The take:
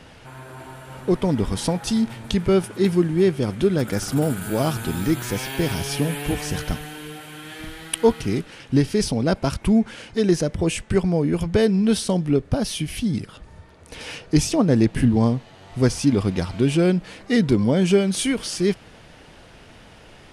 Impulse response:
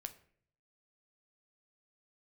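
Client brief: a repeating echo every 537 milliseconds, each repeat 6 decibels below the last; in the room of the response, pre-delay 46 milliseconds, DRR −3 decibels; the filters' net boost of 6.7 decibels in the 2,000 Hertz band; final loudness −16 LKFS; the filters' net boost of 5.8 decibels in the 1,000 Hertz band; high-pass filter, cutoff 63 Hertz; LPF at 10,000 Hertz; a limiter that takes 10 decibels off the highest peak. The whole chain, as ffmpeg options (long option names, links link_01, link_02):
-filter_complex "[0:a]highpass=63,lowpass=10000,equalizer=frequency=1000:width_type=o:gain=6,equalizer=frequency=2000:width_type=o:gain=6.5,alimiter=limit=-13.5dB:level=0:latency=1,aecho=1:1:537|1074|1611|2148|2685|3222:0.501|0.251|0.125|0.0626|0.0313|0.0157,asplit=2[link_01][link_02];[1:a]atrim=start_sample=2205,adelay=46[link_03];[link_02][link_03]afir=irnorm=-1:irlink=0,volume=7dB[link_04];[link_01][link_04]amix=inputs=2:normalize=0,volume=2dB"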